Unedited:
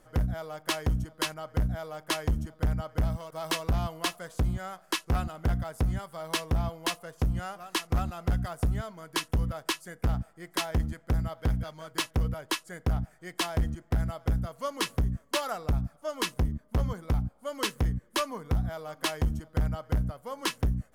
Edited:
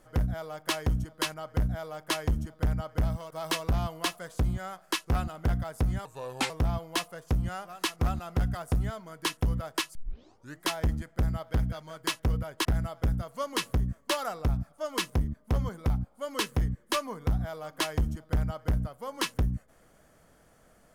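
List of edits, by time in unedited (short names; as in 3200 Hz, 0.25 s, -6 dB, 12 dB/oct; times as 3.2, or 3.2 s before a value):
6.05–6.41 speed 80%
9.86 tape start 0.67 s
12.56–13.89 cut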